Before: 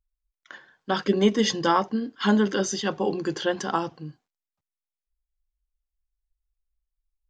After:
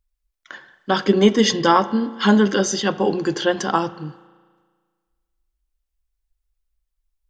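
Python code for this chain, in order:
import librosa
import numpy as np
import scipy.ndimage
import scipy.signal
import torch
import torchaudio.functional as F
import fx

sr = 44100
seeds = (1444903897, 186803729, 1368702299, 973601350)

y = fx.rev_spring(x, sr, rt60_s=1.6, pass_ms=(35,), chirp_ms=20, drr_db=16.0)
y = y * librosa.db_to_amplitude(6.0)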